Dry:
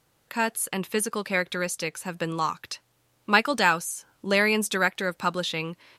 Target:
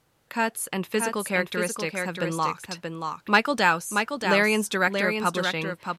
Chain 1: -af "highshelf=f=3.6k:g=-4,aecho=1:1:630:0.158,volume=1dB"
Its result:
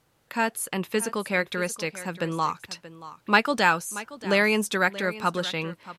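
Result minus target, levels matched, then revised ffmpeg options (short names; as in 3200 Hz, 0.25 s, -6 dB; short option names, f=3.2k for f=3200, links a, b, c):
echo-to-direct -10.5 dB
-af "highshelf=f=3.6k:g=-4,aecho=1:1:630:0.531,volume=1dB"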